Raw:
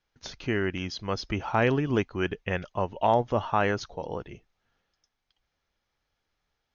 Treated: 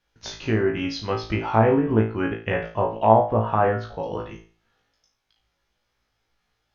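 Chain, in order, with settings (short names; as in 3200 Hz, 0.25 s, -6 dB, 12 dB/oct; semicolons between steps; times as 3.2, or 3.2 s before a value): treble ducked by the level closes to 1200 Hz, closed at -22.5 dBFS; flutter echo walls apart 3.1 m, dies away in 0.38 s; gain +3 dB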